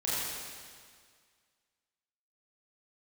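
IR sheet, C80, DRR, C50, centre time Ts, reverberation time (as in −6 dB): −2.0 dB, −9.5 dB, −4.0 dB, 143 ms, 1.9 s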